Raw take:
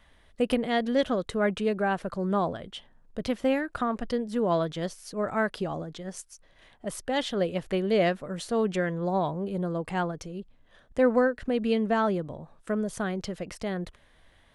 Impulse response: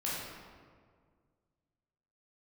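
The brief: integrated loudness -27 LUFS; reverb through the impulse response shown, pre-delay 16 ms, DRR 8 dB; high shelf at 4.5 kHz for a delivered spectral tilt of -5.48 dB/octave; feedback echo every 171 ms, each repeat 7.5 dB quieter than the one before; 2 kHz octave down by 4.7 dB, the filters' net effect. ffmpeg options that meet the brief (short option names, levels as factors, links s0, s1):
-filter_complex "[0:a]equalizer=f=2000:t=o:g=-7,highshelf=f=4500:g=4,aecho=1:1:171|342|513|684|855:0.422|0.177|0.0744|0.0312|0.0131,asplit=2[s0][s1];[1:a]atrim=start_sample=2205,adelay=16[s2];[s1][s2]afir=irnorm=-1:irlink=0,volume=0.224[s3];[s0][s3]amix=inputs=2:normalize=0,volume=1.06"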